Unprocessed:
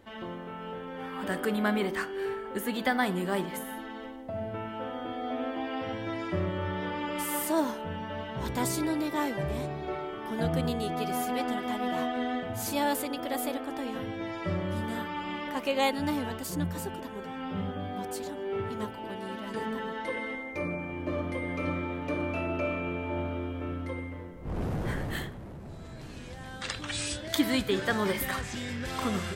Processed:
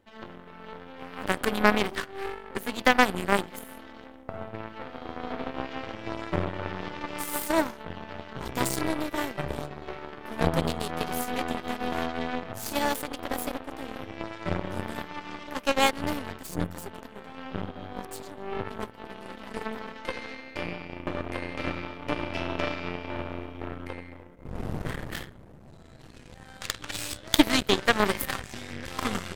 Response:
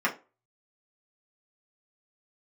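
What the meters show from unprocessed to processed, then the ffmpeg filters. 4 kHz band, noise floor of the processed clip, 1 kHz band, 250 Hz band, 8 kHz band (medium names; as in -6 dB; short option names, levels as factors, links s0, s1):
+4.5 dB, -49 dBFS, +2.5 dB, -0.5 dB, +2.0 dB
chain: -filter_complex "[0:a]asplit=2[s0][s1];[s1]acompressor=threshold=0.0126:ratio=6,volume=0.944[s2];[s0][s2]amix=inputs=2:normalize=0,aeval=exprs='0.335*(cos(1*acos(clip(val(0)/0.335,-1,1)))-cos(1*PI/2))+0.015*(cos(3*acos(clip(val(0)/0.335,-1,1)))-cos(3*PI/2))+0.0473*(cos(4*acos(clip(val(0)/0.335,-1,1)))-cos(4*PI/2))+0.0376*(cos(7*acos(clip(val(0)/0.335,-1,1)))-cos(7*PI/2))':c=same,volume=2.11"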